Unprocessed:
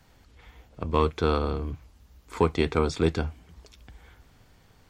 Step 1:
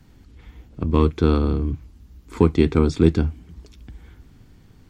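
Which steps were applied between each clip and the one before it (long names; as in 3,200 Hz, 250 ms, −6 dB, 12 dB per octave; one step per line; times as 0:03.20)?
low shelf with overshoot 420 Hz +8.5 dB, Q 1.5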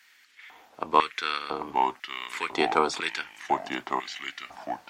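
delay with pitch and tempo change per echo 634 ms, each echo −3 semitones, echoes 3, each echo −6 dB
auto-filter high-pass square 1 Hz 800–1,900 Hz
level +3.5 dB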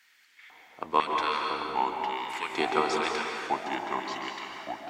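dense smooth reverb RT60 2.3 s, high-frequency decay 0.75×, pre-delay 120 ms, DRR 1 dB
level −4 dB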